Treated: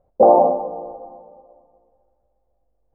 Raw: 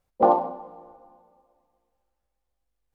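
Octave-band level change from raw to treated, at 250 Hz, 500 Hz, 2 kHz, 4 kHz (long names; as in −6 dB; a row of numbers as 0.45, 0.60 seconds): +5.5 dB, +11.0 dB, below −10 dB, can't be measured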